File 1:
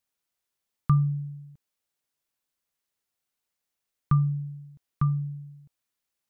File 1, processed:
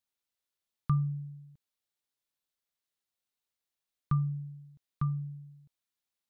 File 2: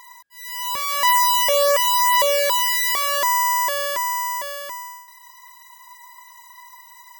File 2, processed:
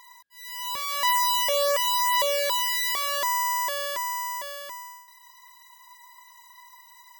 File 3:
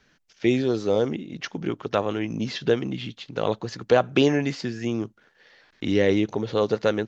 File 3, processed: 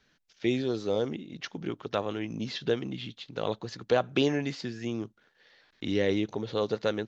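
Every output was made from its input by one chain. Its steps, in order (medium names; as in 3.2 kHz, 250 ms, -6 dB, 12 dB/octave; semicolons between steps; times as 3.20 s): peaking EQ 3.8 kHz +4.5 dB 0.55 oct; trim -6.5 dB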